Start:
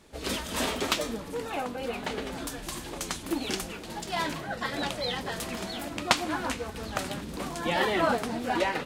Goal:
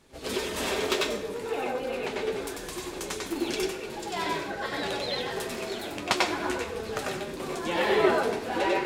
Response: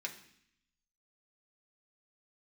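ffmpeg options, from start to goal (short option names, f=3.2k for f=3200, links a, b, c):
-filter_complex "[0:a]flanger=delay=7.5:depth=3.4:regen=-49:speed=0.55:shape=sinusoidal,asplit=2[a][b];[b]highpass=f=420:t=q:w=4.9[c];[1:a]atrim=start_sample=2205,adelay=94[d];[c][d]afir=irnorm=-1:irlink=0,volume=0.5dB[e];[a][e]amix=inputs=2:normalize=0,volume=1dB"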